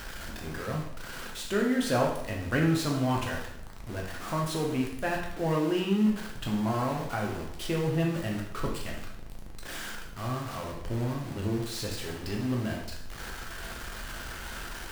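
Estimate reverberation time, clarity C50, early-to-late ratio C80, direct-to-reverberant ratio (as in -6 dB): 0.80 s, 4.5 dB, 7.5 dB, -1.0 dB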